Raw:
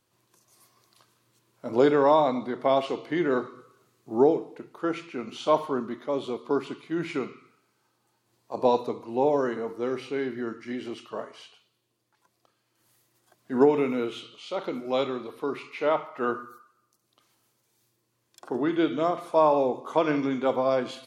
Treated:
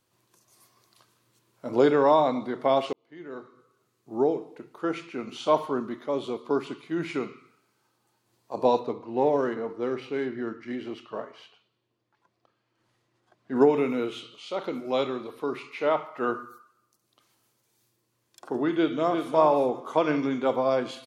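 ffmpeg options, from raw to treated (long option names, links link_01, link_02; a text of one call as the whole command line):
ffmpeg -i in.wav -filter_complex "[0:a]asettb=1/sr,asplit=3[link_01][link_02][link_03];[link_01]atrim=end=8.794[link_04];[link_02]atrim=start=8.79:end=13.56,asetpts=PTS-STARTPTS,afade=type=in:duration=0.004:curve=qsin,afade=type=out:start_time=4.766:duration=0.004:curve=qsin,adynamicsmooth=sensitivity=7:basefreq=4000[link_05];[link_03]atrim=start=13.556[link_06];[link_04][link_05]acrossfade=duration=0.004:curve1=hsin:curve2=qsin[link_07];[link_07][link_06]acrossfade=duration=0.004:curve1=qsin:curve2=hsin,asplit=2[link_08][link_09];[link_09]afade=type=in:start_time=18.71:duration=0.01,afade=type=out:start_time=19.34:duration=0.01,aecho=0:1:350|700|1050:0.501187|0.0751781|0.0112767[link_10];[link_08][link_10]amix=inputs=2:normalize=0,asplit=2[link_11][link_12];[link_11]atrim=end=2.93,asetpts=PTS-STARTPTS,afade=type=out:start_time=2.926:duration=0.004:curve=hsin[link_13];[link_12]atrim=start=2.93,asetpts=PTS-STARTPTS,afade=type=in:duration=2.05[link_14];[link_13][link_14]concat=n=2:v=0:a=1" out.wav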